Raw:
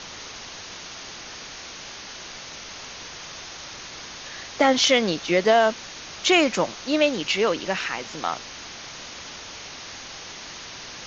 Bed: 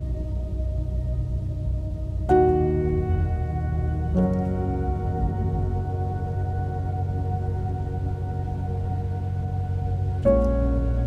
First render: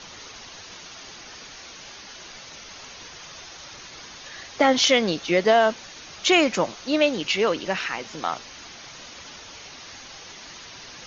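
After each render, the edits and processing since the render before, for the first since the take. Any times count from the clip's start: denoiser 6 dB, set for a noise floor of -39 dBFS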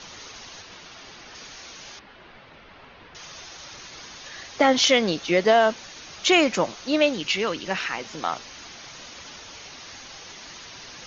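0.62–1.35 air absorption 93 m; 1.99–3.15 air absorption 450 m; 7.12–7.71 dynamic EQ 570 Hz, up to -6 dB, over -34 dBFS, Q 0.8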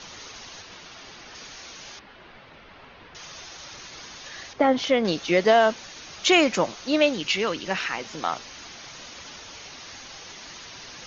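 4.53–5.05 LPF 1100 Hz 6 dB/oct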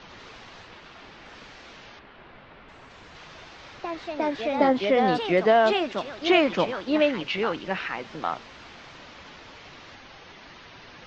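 air absorption 290 m; echoes that change speed 93 ms, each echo +2 st, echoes 2, each echo -6 dB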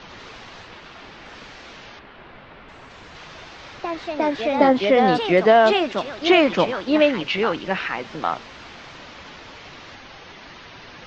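gain +5 dB; limiter -3 dBFS, peak gain reduction 2 dB

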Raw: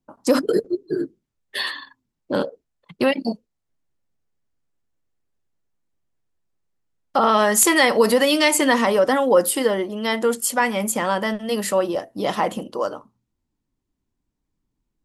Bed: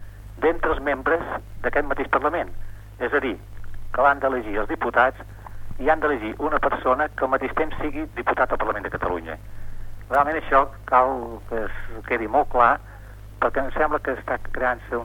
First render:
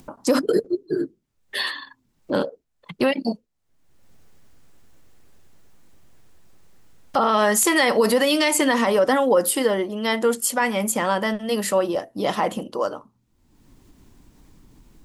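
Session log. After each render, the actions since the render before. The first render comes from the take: upward compressor, threshold -29 dBFS; limiter -9 dBFS, peak gain reduction 5 dB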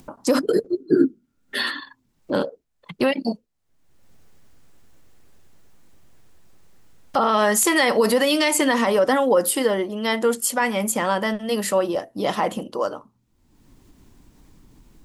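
0.8–1.8 small resonant body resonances 250/1400 Hz, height 17 dB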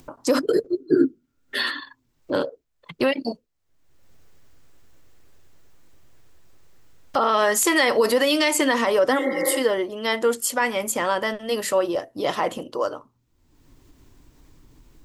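9.21–9.55 spectral repair 300–2300 Hz after; thirty-one-band EQ 200 Hz -12 dB, 800 Hz -3 dB, 10000 Hz -5 dB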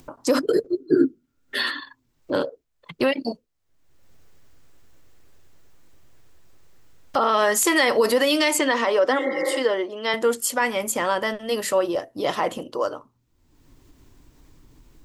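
8.59–10.14 BPF 270–6000 Hz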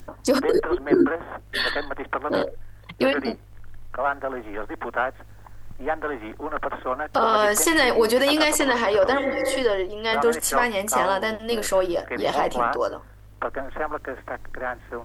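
add bed -7 dB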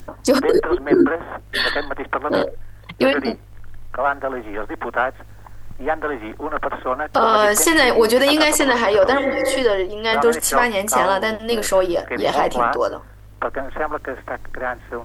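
gain +4.5 dB; limiter -3 dBFS, peak gain reduction 2 dB

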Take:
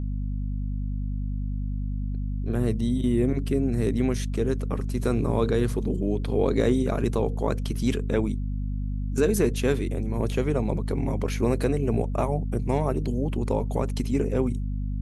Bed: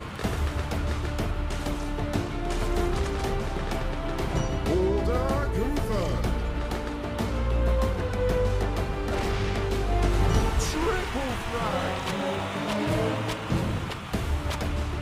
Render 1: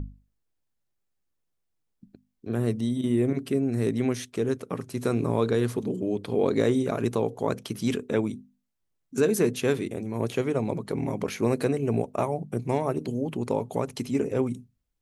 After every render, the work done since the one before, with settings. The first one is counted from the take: notches 50/100/150/200/250 Hz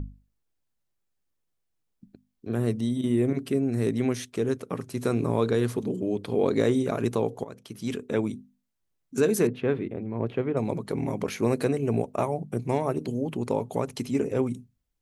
7.44–8.27 fade in, from -19 dB; 9.47–10.57 air absorption 460 m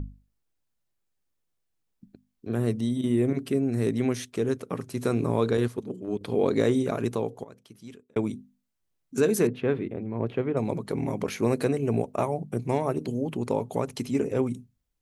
5.57–6.21 gate -27 dBFS, range -9 dB; 6.85–8.16 fade out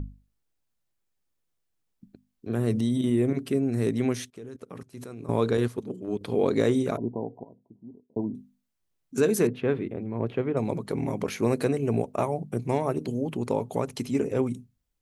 2.7–3.1 fast leveller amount 70%; 4.3–5.29 level quantiser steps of 20 dB; 6.97–8.35 rippled Chebyshev low-pass 1000 Hz, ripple 6 dB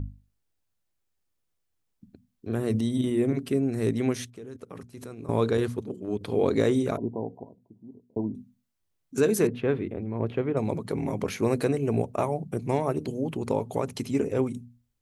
bell 89 Hz +7 dB 0.52 oct; notches 60/120/180/240 Hz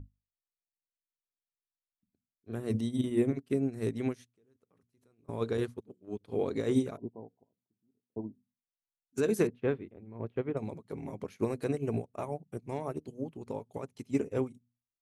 limiter -16 dBFS, peak gain reduction 5.5 dB; upward expander 2.5:1, over -41 dBFS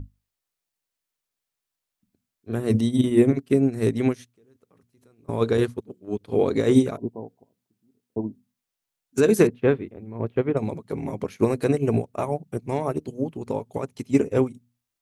gain +10.5 dB

